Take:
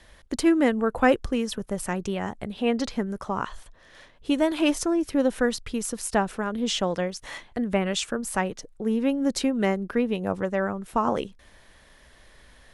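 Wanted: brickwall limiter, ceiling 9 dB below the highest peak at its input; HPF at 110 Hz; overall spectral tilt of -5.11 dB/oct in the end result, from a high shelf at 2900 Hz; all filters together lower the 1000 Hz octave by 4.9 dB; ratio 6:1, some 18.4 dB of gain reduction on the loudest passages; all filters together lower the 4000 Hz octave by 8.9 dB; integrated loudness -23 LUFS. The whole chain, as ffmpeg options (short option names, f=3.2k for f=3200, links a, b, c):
-af "highpass=110,equalizer=f=1k:t=o:g=-5.5,highshelf=f=2.9k:g=-8,equalizer=f=4k:t=o:g=-5.5,acompressor=threshold=-37dB:ratio=6,volume=20dB,alimiter=limit=-13dB:level=0:latency=1"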